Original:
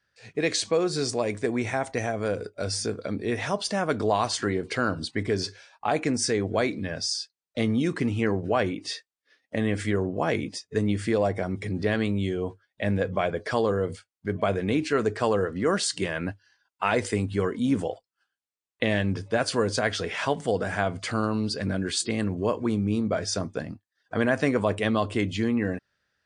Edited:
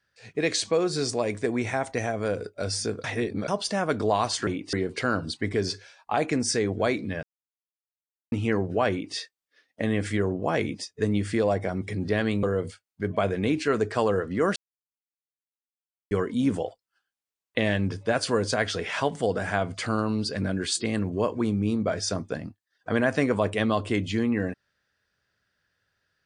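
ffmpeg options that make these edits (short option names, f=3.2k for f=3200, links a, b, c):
-filter_complex "[0:a]asplit=10[a][b][c][d][e][f][g][h][i][j];[a]atrim=end=3.042[k];[b]atrim=start=3.038:end=3.482,asetpts=PTS-STARTPTS,areverse[l];[c]atrim=start=3.478:end=4.472[m];[d]atrim=start=8.638:end=8.902[n];[e]atrim=start=4.468:end=6.97,asetpts=PTS-STARTPTS,afade=t=out:st=2.498:d=0.004:c=hsin[o];[f]atrim=start=6.97:end=8.06,asetpts=PTS-STARTPTS,volume=0[p];[g]atrim=start=8.06:end=12.172,asetpts=PTS-STARTPTS,afade=t=in:d=0.004:c=hsin[q];[h]atrim=start=13.678:end=15.81,asetpts=PTS-STARTPTS,afade=t=out:st=2.128:d=0.004:c=hsin[r];[i]atrim=start=15.81:end=17.36,asetpts=PTS-STARTPTS,volume=0[s];[j]atrim=start=17.36,asetpts=PTS-STARTPTS,afade=t=in:d=0.004:c=hsin[t];[k][l]acrossfade=d=0.004:c1=hsin:c2=hsin[u];[u][m]acrossfade=d=0.004:c1=hsin:c2=hsin[v];[v][n]acrossfade=d=0.004:c1=hsin:c2=hsin[w];[o][p][q]concat=n=3:v=0:a=1[x];[w][x]acrossfade=d=0.004:c1=hsin:c2=hsin[y];[r][s][t]concat=n=3:v=0:a=1[z];[y][z]acrossfade=d=0.004:c1=hsin:c2=hsin"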